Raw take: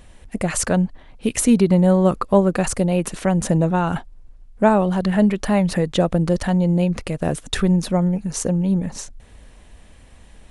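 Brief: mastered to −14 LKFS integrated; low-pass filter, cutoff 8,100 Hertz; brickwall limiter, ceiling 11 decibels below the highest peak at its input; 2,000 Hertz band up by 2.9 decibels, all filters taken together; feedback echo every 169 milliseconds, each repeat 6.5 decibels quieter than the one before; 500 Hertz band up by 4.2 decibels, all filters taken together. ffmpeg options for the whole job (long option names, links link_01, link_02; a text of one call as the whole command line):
ffmpeg -i in.wav -af "lowpass=8100,equalizer=frequency=500:width_type=o:gain=5,equalizer=frequency=2000:width_type=o:gain=3.5,alimiter=limit=-12dB:level=0:latency=1,aecho=1:1:169|338|507|676|845|1014:0.473|0.222|0.105|0.0491|0.0231|0.0109,volume=7dB" out.wav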